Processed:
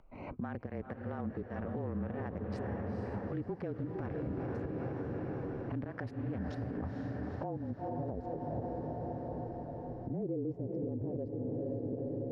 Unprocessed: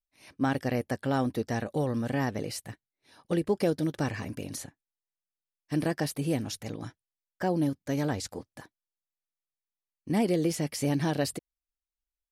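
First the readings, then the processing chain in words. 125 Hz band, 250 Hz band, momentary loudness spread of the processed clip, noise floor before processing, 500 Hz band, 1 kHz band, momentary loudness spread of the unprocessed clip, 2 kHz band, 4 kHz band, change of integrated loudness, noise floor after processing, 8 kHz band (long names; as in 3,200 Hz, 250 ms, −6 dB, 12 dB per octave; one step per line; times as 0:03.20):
−5.0 dB, −7.5 dB, 4 LU, below −85 dBFS, −6.5 dB, −7.5 dB, 12 LU, −12.0 dB, below −20 dB, −8.5 dB, −48 dBFS, below −35 dB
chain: adaptive Wiener filter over 25 samples
low-pass filter sweep 1,600 Hz → 510 Hz, 0:06.35–0:08.59
gate pattern "xxx.x.x..xx.x" 113 BPM −12 dB
in parallel at 0 dB: upward compression, threshold −31 dBFS
on the sum: parametric band 140 Hz +2.5 dB 0.34 octaves
on a send: feedback delay with all-pass diffusion 467 ms, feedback 68%, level −9.5 dB
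on the sum: downward compressor 3 to 1, threshold −34 dBFS, peak gain reduction 16 dB
parametric band 1,500 Hz −5.5 dB 0.8 octaves
frequency shifter −30 Hz
brickwall limiter −29 dBFS, peak gain reduction 10 dB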